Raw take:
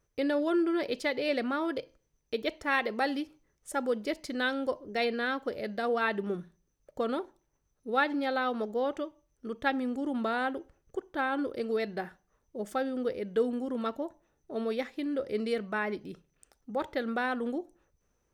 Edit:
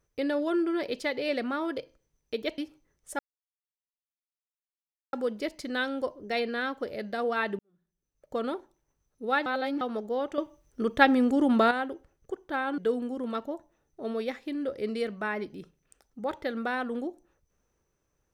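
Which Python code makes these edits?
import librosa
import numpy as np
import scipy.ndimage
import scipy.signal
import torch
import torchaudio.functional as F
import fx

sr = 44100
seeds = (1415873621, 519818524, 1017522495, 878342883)

y = fx.edit(x, sr, fx.cut(start_s=2.58, length_s=0.59),
    fx.insert_silence(at_s=3.78, length_s=1.94),
    fx.fade_in_span(start_s=6.24, length_s=0.78, curve='qua'),
    fx.reverse_span(start_s=8.11, length_s=0.35),
    fx.clip_gain(start_s=9.03, length_s=1.33, db=9.0),
    fx.cut(start_s=11.43, length_s=1.86), tone=tone)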